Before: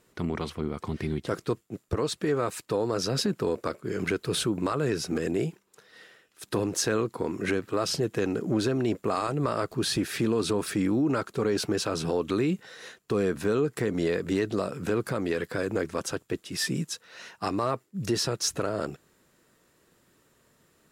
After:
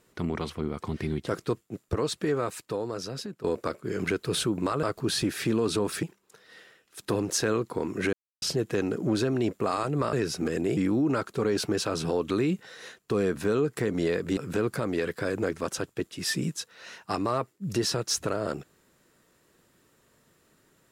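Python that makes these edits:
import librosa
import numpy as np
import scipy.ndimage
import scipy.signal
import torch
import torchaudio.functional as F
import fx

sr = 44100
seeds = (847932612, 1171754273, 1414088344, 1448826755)

y = fx.edit(x, sr, fx.fade_out_to(start_s=2.21, length_s=1.23, floor_db=-15.0),
    fx.swap(start_s=4.83, length_s=0.64, other_s=9.57, other_length_s=1.2),
    fx.silence(start_s=7.57, length_s=0.29),
    fx.cut(start_s=14.37, length_s=0.33), tone=tone)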